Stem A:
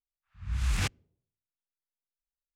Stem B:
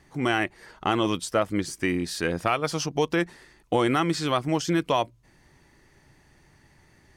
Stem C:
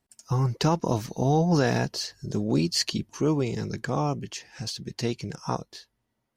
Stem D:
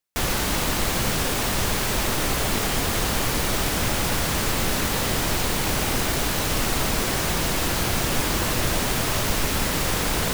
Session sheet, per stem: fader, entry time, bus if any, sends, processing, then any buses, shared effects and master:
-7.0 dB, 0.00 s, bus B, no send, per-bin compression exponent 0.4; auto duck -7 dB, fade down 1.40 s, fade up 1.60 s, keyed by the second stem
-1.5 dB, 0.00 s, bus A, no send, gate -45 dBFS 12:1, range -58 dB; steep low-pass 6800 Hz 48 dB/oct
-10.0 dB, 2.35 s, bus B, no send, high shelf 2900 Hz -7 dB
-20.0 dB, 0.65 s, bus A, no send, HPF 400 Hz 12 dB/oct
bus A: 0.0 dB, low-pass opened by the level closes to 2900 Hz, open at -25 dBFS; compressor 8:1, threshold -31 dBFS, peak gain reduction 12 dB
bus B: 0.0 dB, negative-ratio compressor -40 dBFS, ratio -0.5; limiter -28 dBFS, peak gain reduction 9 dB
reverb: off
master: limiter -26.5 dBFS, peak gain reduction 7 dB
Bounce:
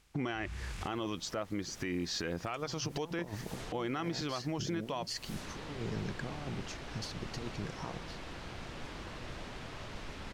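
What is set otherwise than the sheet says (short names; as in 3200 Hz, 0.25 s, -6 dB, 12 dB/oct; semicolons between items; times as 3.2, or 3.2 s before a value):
stem A -7.0 dB -> -17.5 dB; stem B -1.5 dB -> +9.0 dB; stem D: missing HPF 400 Hz 12 dB/oct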